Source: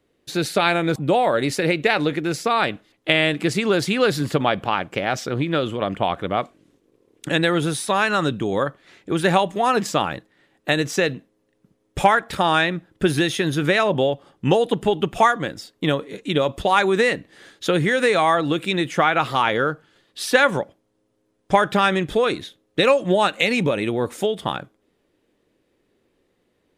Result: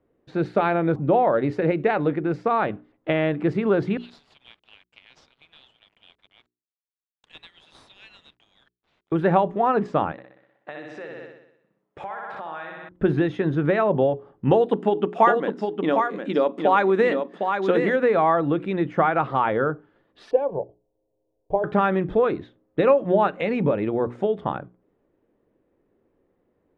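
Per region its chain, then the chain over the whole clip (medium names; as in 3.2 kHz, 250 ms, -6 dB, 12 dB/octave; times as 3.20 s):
3.97–9.12 s: inverse Chebyshev high-pass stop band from 1.2 kHz, stop band 50 dB + companded quantiser 4-bit
10.12–12.89 s: flutter echo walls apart 10.6 m, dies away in 0.79 s + compression 10:1, threshold -23 dBFS + high-pass 1 kHz 6 dB/octave
14.51–17.96 s: brick-wall FIR high-pass 170 Hz + treble shelf 3.7 kHz +11.5 dB + delay 758 ms -5.5 dB
20.31–21.64 s: boxcar filter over 23 samples + static phaser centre 550 Hz, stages 4 + comb 4.4 ms, depth 30%
whole clip: low-pass 1.2 kHz 12 dB/octave; hum notches 60/120/180/240/300/360/420 Hz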